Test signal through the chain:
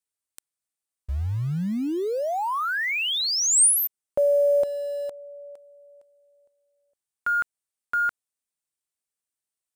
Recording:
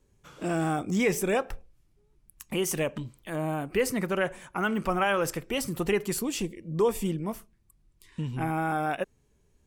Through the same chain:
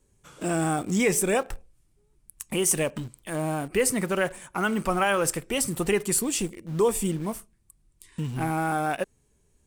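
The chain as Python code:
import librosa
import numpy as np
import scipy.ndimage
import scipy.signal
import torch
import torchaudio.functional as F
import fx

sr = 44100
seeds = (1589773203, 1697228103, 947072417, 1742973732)

p1 = fx.peak_eq(x, sr, hz=8800.0, db=11.0, octaves=0.61)
p2 = fx.quant_dither(p1, sr, seeds[0], bits=6, dither='none')
y = p1 + (p2 * librosa.db_to_amplitude(-12.0))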